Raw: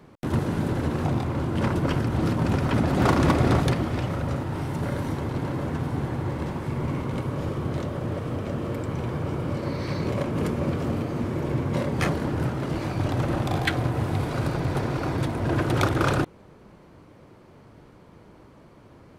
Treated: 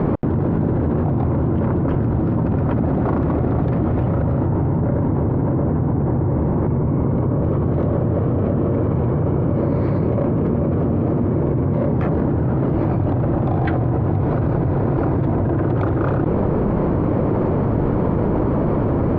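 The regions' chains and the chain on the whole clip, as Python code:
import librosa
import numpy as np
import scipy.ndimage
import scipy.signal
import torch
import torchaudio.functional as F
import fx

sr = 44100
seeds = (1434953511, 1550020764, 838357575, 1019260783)

y = fx.chain(x, sr, fx.lowpass(hz=6000.0, slope=12),
    fx.high_shelf(hz=2700.0, db=-10.5), at=(4.46, 7.44))
y = scipy.signal.sosfilt(scipy.signal.bessel(2, 730.0, 'lowpass', norm='mag', fs=sr, output='sos'), y)
y = fx.env_flatten(y, sr, amount_pct=100)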